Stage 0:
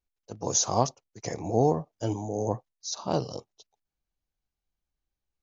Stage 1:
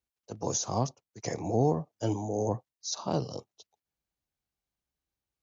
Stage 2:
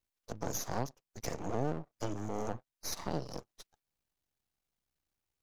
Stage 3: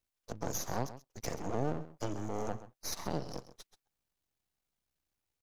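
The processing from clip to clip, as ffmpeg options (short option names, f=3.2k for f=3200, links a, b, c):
-filter_complex "[0:a]highpass=66,acrossover=split=290[a][b];[b]alimiter=limit=-19.5dB:level=0:latency=1:release=471[c];[a][c]amix=inputs=2:normalize=0"
-af "acompressor=threshold=-41dB:ratio=2,aeval=exprs='max(val(0),0)':c=same,volume=5dB"
-af "aecho=1:1:131:0.188"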